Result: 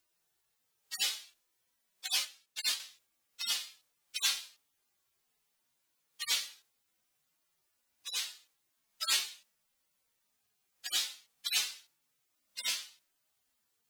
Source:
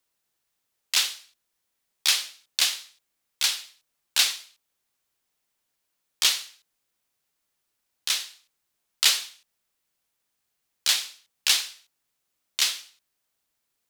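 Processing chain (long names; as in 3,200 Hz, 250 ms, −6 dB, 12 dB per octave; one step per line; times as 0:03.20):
harmonic-percussive split with one part muted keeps harmonic
0:02.19–0:02.80: transient designer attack +1 dB, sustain −7 dB
level +3.5 dB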